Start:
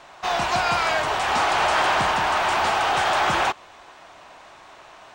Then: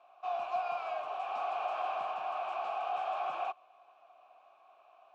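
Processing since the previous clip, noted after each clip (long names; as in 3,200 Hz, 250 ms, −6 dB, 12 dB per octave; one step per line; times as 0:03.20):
formant filter a
level −7.5 dB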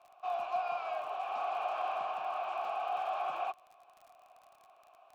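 surface crackle 44 per second −47 dBFS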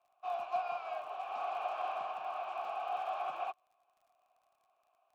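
expander for the loud parts 1.5 to 1, over −58 dBFS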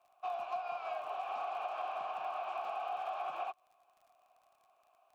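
downward compressor 5 to 1, threshold −41 dBFS, peak gain reduction 10.5 dB
level +5 dB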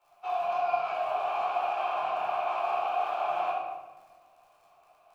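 rectangular room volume 780 cubic metres, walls mixed, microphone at 4.3 metres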